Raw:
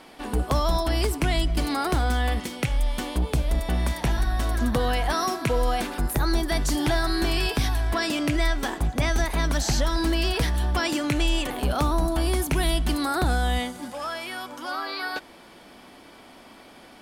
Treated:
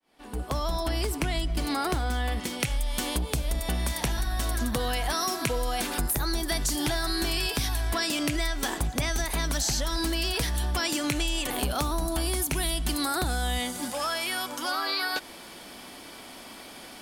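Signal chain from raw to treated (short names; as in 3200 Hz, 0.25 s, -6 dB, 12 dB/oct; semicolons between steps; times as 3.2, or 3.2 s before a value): opening faded in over 1.13 s; high shelf 3500 Hz +3 dB, from 2.6 s +11 dB; compressor, threshold -26 dBFS, peak gain reduction 9.5 dB; gain +1.5 dB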